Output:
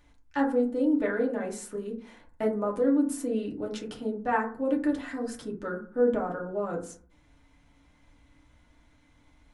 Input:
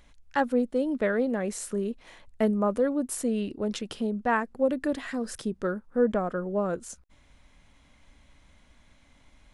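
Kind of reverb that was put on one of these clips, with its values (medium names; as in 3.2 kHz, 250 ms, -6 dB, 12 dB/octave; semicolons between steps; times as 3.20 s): FDN reverb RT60 0.44 s, low-frequency decay 1.25×, high-frequency decay 0.35×, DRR -2.5 dB; trim -7 dB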